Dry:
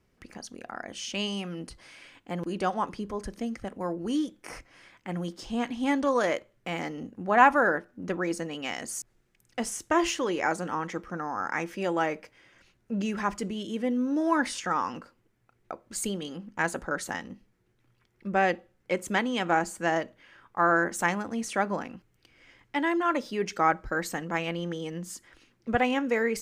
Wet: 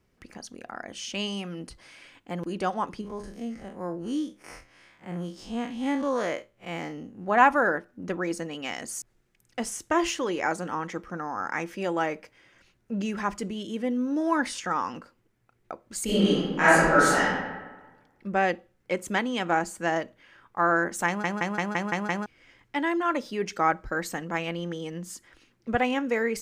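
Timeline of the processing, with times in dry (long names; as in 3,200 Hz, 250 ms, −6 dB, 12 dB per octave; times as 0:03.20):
0:03.01–0:07.27: spectrum smeared in time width 81 ms
0:16.04–0:17.22: thrown reverb, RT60 1.3 s, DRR −11.5 dB
0:21.07: stutter in place 0.17 s, 7 plays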